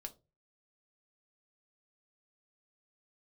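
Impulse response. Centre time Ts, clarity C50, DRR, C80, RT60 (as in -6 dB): 5 ms, 18.0 dB, 4.5 dB, 25.5 dB, 0.30 s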